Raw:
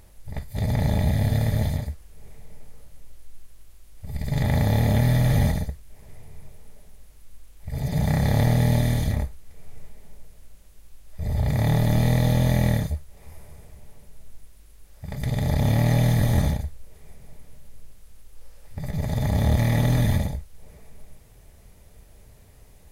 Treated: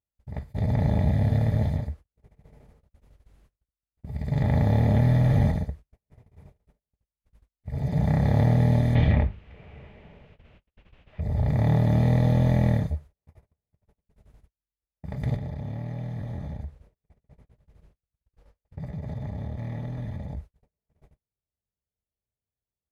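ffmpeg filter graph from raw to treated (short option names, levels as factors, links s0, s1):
-filter_complex "[0:a]asettb=1/sr,asplit=3[s0][s1][s2];[s0]atrim=end=8.954[s3];[s1]atrim=start=8.95:end=11.21,asetpts=PTS-STARTPTS,afade=t=in:d=0.004:c=qsin,afade=t=out:st=2.256:d=0.004:c=qsin,bandreject=f=50:t=h:w=6,bandreject=f=100:t=h:w=6,bandreject=f=150:t=h:w=6,bandreject=f=200:t=h:w=6,bandreject=f=250:t=h:w=6,bandreject=f=300:t=h:w=6,bandreject=f=350:t=h:w=6,bandreject=f=400:t=h:w=6,bandreject=f=450:t=h:w=6,acontrast=57,lowpass=f=2800:t=q:w=3.1[s4];[s2]atrim=start=11.206[s5];[s3][s4]acrossfade=d=0.004:c1=hsin:c2=qsin[s6];[s6][s5]acrossfade=d=0.004:c1=qsin:c2=hsin,asettb=1/sr,asplit=3[s7][s8][s9];[s7]atrim=end=15.364[s10];[s8]atrim=start=15.36:end=20.37,asetpts=PTS-STARTPTS,afade=t=in:d=0.004:c=qsin,afade=t=out:st=5.006:d=0.004:c=qsin,highshelf=f=7400:g=-6.5,acompressor=threshold=0.0398:ratio=16:attack=3.2:release=140:knee=1:detection=peak[s11];[s9]atrim=start=20.366[s12];[s10][s11]acrossfade=d=0.004:c1=hsin:c2=qsin[s13];[s13][s12]acrossfade=d=0.004:c1=qsin:c2=hsin,lowpass=f=1200:p=1,agate=range=0.00891:threshold=0.0158:ratio=16:detection=peak,highpass=56"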